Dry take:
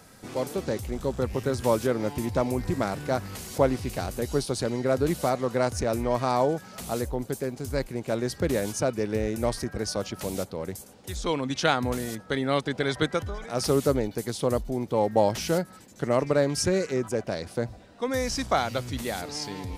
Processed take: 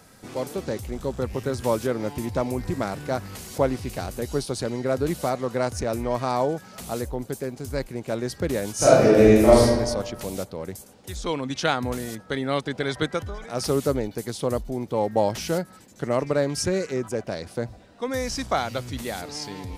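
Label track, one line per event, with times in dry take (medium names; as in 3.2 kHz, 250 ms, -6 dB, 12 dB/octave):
8.750000	9.620000	reverb throw, RT60 1.3 s, DRR -11.5 dB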